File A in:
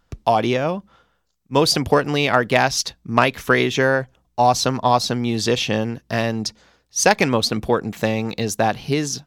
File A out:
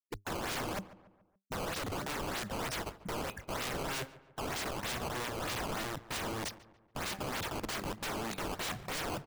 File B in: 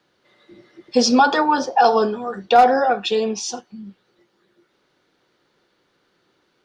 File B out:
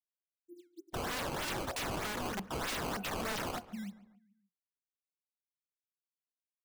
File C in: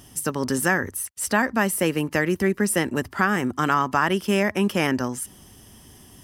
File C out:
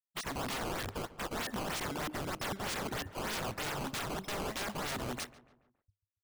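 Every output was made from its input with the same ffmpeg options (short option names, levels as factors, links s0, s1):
-filter_complex "[0:a]afftfilt=real='re*gte(hypot(re,im),0.0501)':imag='im*gte(hypot(re,im),0.0501)':win_size=1024:overlap=0.75,equalizer=f=480:w=4.2:g=-8,acompressor=threshold=0.1:ratio=16,flanger=delay=9.1:depth=2.3:regen=68:speed=0.87:shape=triangular,acrusher=samples=14:mix=1:aa=0.000001:lfo=1:lforange=22.4:lforate=3.2,aeval=exprs='(mod(39.8*val(0)+1,2)-1)/39.8':c=same,asplit=2[s0][s1];[s1]adelay=142,lowpass=f=2200:p=1,volume=0.15,asplit=2[s2][s3];[s3]adelay=142,lowpass=f=2200:p=1,volume=0.49,asplit=2[s4][s5];[s5]adelay=142,lowpass=f=2200:p=1,volume=0.49,asplit=2[s6][s7];[s7]adelay=142,lowpass=f=2200:p=1,volume=0.49[s8];[s0][s2][s4][s6][s8]amix=inputs=5:normalize=0"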